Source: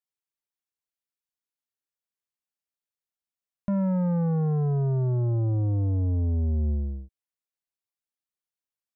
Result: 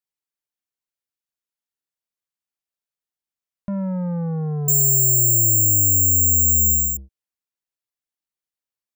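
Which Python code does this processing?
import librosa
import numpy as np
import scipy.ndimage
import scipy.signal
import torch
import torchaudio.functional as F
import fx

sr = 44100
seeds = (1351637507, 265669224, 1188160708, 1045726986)

y = fx.resample_bad(x, sr, factor=6, down='filtered', up='zero_stuff', at=(4.68, 6.97))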